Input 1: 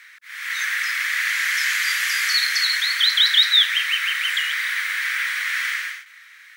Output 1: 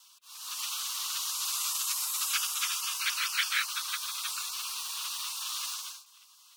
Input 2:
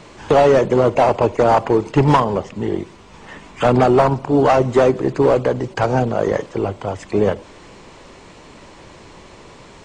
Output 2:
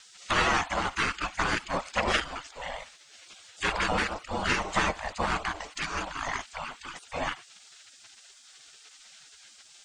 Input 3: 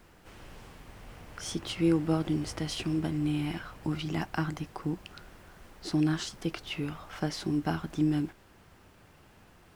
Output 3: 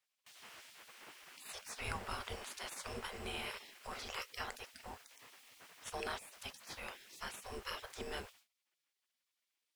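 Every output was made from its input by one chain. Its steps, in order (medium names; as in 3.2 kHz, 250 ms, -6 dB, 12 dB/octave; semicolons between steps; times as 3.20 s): spectral gate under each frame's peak -20 dB weak; gate with hold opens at -53 dBFS; trim +1.5 dB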